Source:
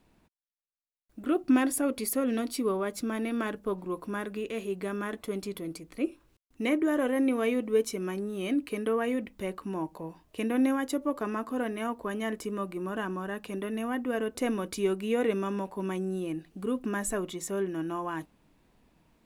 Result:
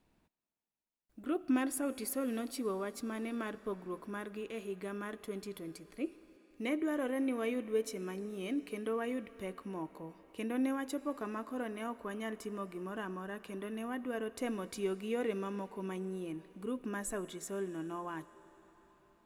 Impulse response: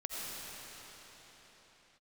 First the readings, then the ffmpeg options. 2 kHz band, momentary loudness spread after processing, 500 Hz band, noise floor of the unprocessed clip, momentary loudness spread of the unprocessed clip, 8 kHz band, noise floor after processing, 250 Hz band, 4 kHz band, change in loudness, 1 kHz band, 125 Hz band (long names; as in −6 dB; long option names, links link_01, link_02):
−7.0 dB, 9 LU, −7.5 dB, −69 dBFS, 9 LU, −7.0 dB, −73 dBFS, −7.5 dB, −7.0 dB, −7.5 dB, −7.0 dB, −7.5 dB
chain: -filter_complex "[0:a]asplit=2[link_01][link_02];[1:a]atrim=start_sample=2205,lowshelf=frequency=230:gain=-11.5[link_03];[link_02][link_03]afir=irnorm=-1:irlink=0,volume=-17dB[link_04];[link_01][link_04]amix=inputs=2:normalize=0,volume=-8dB"